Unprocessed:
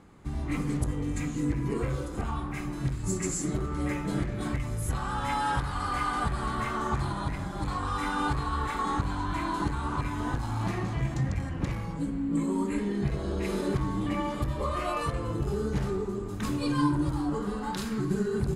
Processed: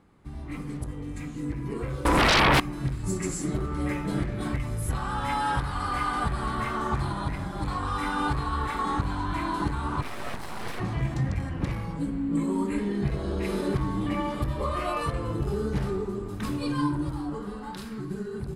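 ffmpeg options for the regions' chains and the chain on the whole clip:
ffmpeg -i in.wav -filter_complex "[0:a]asettb=1/sr,asplit=3[link_01][link_02][link_03];[link_01]atrim=end=2.054[link_04];[link_02]atrim=start=2.05:end=2.6,asetpts=PTS-STARTPTS,afade=type=in:duration=0.004:curve=qsin,afade=type=out:start_time=0.546:duration=0.004:curve=qsin,equalizer=frequency=980:width_type=o:width=0.54:gain=13.5,aeval=exprs='0.158*sin(PI/2*6.31*val(0)/0.158)':channel_layout=same[link_05];[link_03]atrim=start=2.596[link_06];[link_04][link_05]acrossfade=duration=0.004:curve1=hsin:curve2=qsin[link_07];[link_07][link_06]acrossfade=duration=0.004:curve1=qsin:curve2=hsin,asettb=1/sr,asplit=3[link_08][link_09][link_10];[link_08]atrim=end=10.024[link_11];[link_09]atrim=start=10.02:end=10.8,asetpts=PTS-STARTPTS,afade=type=in:duration=0.004:curve=qsin,afade=type=out:start_time=0.776:duration=0.004:curve=qsin,bass=frequency=250:gain=-7,treble=frequency=4000:gain=4,aeval=exprs='abs(val(0))':channel_layout=same[link_12];[link_10]atrim=start=10.796[link_13];[link_11][link_12]acrossfade=duration=0.004:curve1=hsin:curve2=qsin[link_14];[link_14][link_13]acrossfade=duration=0.004:curve1=qsin:curve2=hsin,dynaudnorm=framelen=240:gausssize=17:maxgain=7dB,equalizer=frequency=6800:width=3.6:gain=-6.5,volume=-5.5dB" out.wav

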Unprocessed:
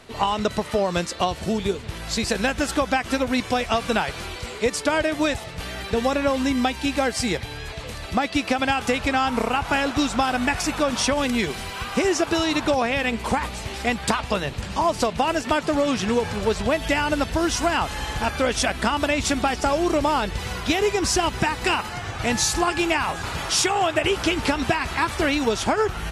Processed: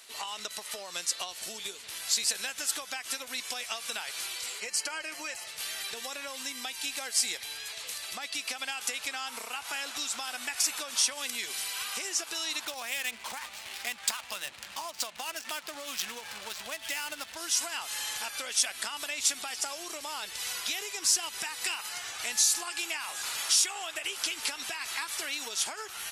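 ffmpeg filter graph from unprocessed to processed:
ffmpeg -i in.wav -filter_complex "[0:a]asettb=1/sr,asplit=3[link_01][link_02][link_03];[link_01]atrim=end=4.604[link_04];[link_02]atrim=start=4.6:end=5.47,asetpts=PTS-STARTPTS,afade=type=in:duration=0.004:curve=qsin,afade=type=out:start_time=0.866:duration=0.004:curve=qsin,asuperstop=centerf=3600:order=4:qfactor=4.7,highshelf=frequency=8100:gain=-9.5,aecho=1:1:5.6:0.51,atrim=end_sample=38367[link_05];[link_03]atrim=start=5.466[link_06];[link_04][link_05]acrossfade=duration=0.004:curve1=hsin:curve2=qsin[link_07];[link_07][link_06]acrossfade=duration=0.004:curve1=qsin:curve2=hsin,asettb=1/sr,asplit=3[link_08][link_09][link_10];[link_08]atrim=end=12.654[link_11];[link_09]atrim=start=12.65:end=17.37,asetpts=PTS-STARTPTS,afade=type=in:duration=0.004:curve=qsin,afade=type=out:start_time=4.716:duration=0.004:curve=qsin,equalizer=frequency=430:width_type=o:width=0.26:gain=-9,adynamicsmooth=sensitivity=6.5:basefreq=1300[link_12];[link_10]atrim=start=17.366[link_13];[link_11][link_12]acrossfade=duration=0.004:curve1=hsin:curve2=qsin[link_14];[link_14][link_13]acrossfade=duration=0.004:curve1=qsin:curve2=hsin,equalizer=frequency=140:width_type=o:width=1.1:gain=-4,acompressor=threshold=-24dB:ratio=6,aderivative,volume=5.5dB" out.wav

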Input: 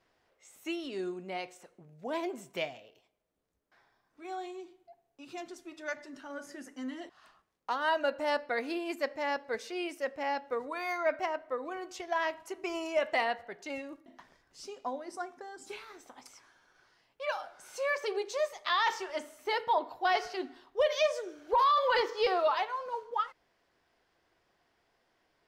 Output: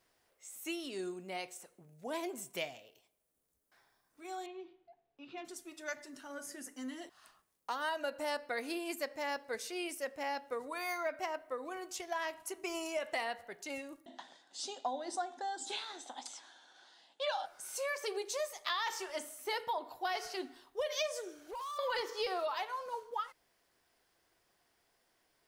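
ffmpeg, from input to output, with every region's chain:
ffmpeg -i in.wav -filter_complex "[0:a]asettb=1/sr,asplit=3[link_01][link_02][link_03];[link_01]atrim=end=4.464[link_04];[link_02]atrim=start=4.46:end=5.45,asetpts=PTS-STARTPTS,afade=type=in:duration=0.004:curve=qsin,afade=type=out:start_time=0.986:duration=0.004:curve=qsin,lowpass=frequency=3500:width=0.5412,lowpass=frequency=3500:width=1.3066,asplit=2[link_05][link_06];[link_06]adelay=21,volume=-12.5dB[link_07];[link_05][link_07]amix=inputs=2:normalize=0,atrim=end_sample=43659[link_08];[link_03]atrim=start=5.446[link_09];[link_04][link_08]acrossfade=duration=0.004:curve1=hsin:curve2=qsin[link_10];[link_10][link_09]acrossfade=duration=0.004:curve1=qsin:curve2=hsin,asettb=1/sr,asplit=3[link_11][link_12][link_13];[link_11]atrim=end=14.064[link_14];[link_12]atrim=start=14.06:end=17.46,asetpts=PTS-STARTPTS,afade=type=in:duration=0.004:curve=qsin,afade=type=out:start_time=3.396:duration=0.004:curve=qsin,acontrast=87,highpass=frequency=230:width=0.5412,highpass=frequency=230:width=1.3066,equalizer=frequency=420:width_type=q:width=4:gain=-8,equalizer=frequency=790:width_type=q:width=4:gain=7,equalizer=frequency=1200:width_type=q:width=4:gain=-6,equalizer=frequency=2300:width_type=q:width=4:gain=-8,equalizer=frequency=3600:width_type=q:width=4:gain=10,equalizer=frequency=5500:width_type=q:width=4:gain=-7,lowpass=frequency=7100:width=0.5412,lowpass=frequency=7100:width=1.3066[link_15];[link_13]atrim=start=17.456[link_16];[link_14][link_15]acrossfade=duration=0.004:curve1=hsin:curve2=qsin[link_17];[link_17][link_16]acrossfade=duration=0.004:curve1=qsin:curve2=hsin,asettb=1/sr,asplit=3[link_18][link_19][link_20];[link_18]atrim=end=21.384[link_21];[link_19]atrim=start=21.38:end=21.79,asetpts=PTS-STARTPTS,afade=type=in:duration=0.004:curve=qsin,afade=type=out:start_time=0.406:duration=0.004:curve=qsin,acompressor=threshold=-41dB:ratio=3:attack=3.2:release=140:knee=1:detection=peak,asoftclip=type=hard:threshold=-35.5dB[link_22];[link_20]atrim=start=21.786[link_23];[link_21][link_22]acrossfade=duration=0.004:curve1=hsin:curve2=qsin[link_24];[link_24][link_23]acrossfade=duration=0.004:curve1=qsin:curve2=hsin,equalizer=frequency=9700:width=1.4:gain=5.5,acompressor=threshold=-29dB:ratio=6,aemphasis=mode=production:type=50kf,volume=-4dB" out.wav

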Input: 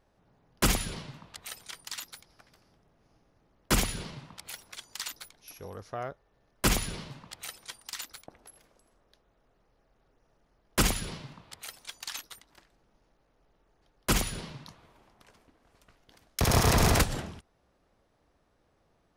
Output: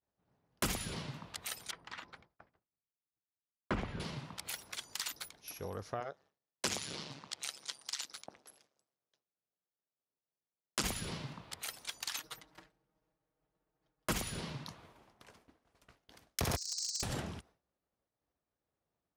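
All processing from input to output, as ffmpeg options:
ffmpeg -i in.wav -filter_complex "[0:a]asettb=1/sr,asplit=3[link_01][link_02][link_03];[link_01]atrim=end=1.714[link_04];[link_02]atrim=start=1.71:end=4,asetpts=PTS-STARTPTS,afade=type=in:duration=0.004:curve=qsin,afade=type=out:start_time=2.286:duration=0.004:curve=qsin,agate=range=-33dB:threshold=-59dB:ratio=3:release=100:detection=peak,lowpass=1800,bandreject=frequency=145.3:width_type=h:width=4,bandreject=frequency=290.6:width_type=h:width=4,bandreject=frequency=435.9:width_type=h:width=4,bandreject=frequency=581.2:width_type=h:width=4,bandreject=frequency=726.5:width_type=h:width=4,bandreject=frequency=871.8:width_type=h:width=4,bandreject=frequency=1017.1:width_type=h:width=4[link_05];[link_03]atrim=start=3.996[link_06];[link_04][link_05]acrossfade=duration=0.004:curve1=hsin:curve2=qsin[link_07];[link_07][link_06]acrossfade=duration=0.004:curve1=qsin:curve2=hsin,asettb=1/sr,asplit=3[link_08][link_09][link_10];[link_08]atrim=end=6.004[link_11];[link_09]atrim=start=6:end=10.84,asetpts=PTS-STARTPTS,afade=type=in:duration=0.004:curve=qsin,afade=type=out:start_time=4.836:duration=0.004:curve=qsin,bass=frequency=250:gain=-3,treble=frequency=4000:gain=12,tremolo=f=140:d=0.824,highpass=120,lowpass=5500[link_12];[link_10]atrim=start=10.836[link_13];[link_11][link_12]acrossfade=duration=0.004:curve1=hsin:curve2=qsin[link_14];[link_14][link_13]acrossfade=duration=0.004:curve1=qsin:curve2=hsin,asettb=1/sr,asplit=3[link_15][link_16][link_17];[link_15]atrim=end=12.194[link_18];[link_16]atrim=start=12.19:end=14.11,asetpts=PTS-STARTPTS,afade=type=in:duration=0.004:curve=qsin,afade=type=out:start_time=1.916:duration=0.004:curve=qsin,highshelf=frequency=2900:gain=-7,aecho=1:1:6.4:0.87,atrim=end_sample=84672[link_19];[link_17]atrim=start=14.106[link_20];[link_18][link_19]acrossfade=duration=0.004:curve1=hsin:curve2=qsin[link_21];[link_21][link_20]acrossfade=duration=0.004:curve1=qsin:curve2=hsin,asettb=1/sr,asplit=3[link_22][link_23][link_24];[link_22]atrim=end=16.564[link_25];[link_23]atrim=start=16.56:end=17.03,asetpts=PTS-STARTPTS,afade=type=in:duration=0.004:curve=qsin,afade=type=out:start_time=0.466:duration=0.004:curve=qsin,asuperpass=centerf=6000:order=20:qfactor=1.4,asoftclip=type=hard:threshold=-28.5dB[link_26];[link_24]atrim=start=17.026[link_27];[link_25][link_26]acrossfade=duration=0.004:curve1=hsin:curve2=qsin[link_28];[link_28][link_27]acrossfade=duration=0.004:curve1=qsin:curve2=hsin,highpass=58,agate=range=-33dB:threshold=-57dB:ratio=3:detection=peak,acompressor=threshold=-38dB:ratio=2.5,volume=1.5dB" out.wav

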